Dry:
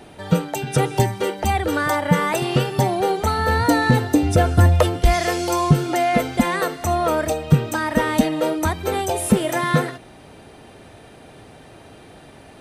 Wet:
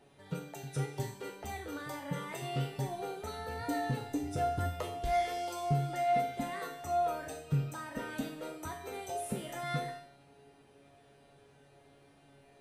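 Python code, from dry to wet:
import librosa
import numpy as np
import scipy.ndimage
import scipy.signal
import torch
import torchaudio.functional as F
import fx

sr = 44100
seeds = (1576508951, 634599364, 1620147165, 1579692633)

y = fx.peak_eq(x, sr, hz=400.0, db=2.5, octaves=0.29)
y = fx.comb_fb(y, sr, f0_hz=140.0, decay_s=0.52, harmonics='all', damping=0.0, mix_pct=90)
y = fx.rev_schroeder(y, sr, rt60_s=0.56, comb_ms=30, drr_db=9.5)
y = F.gain(torch.from_numpy(y), -6.5).numpy()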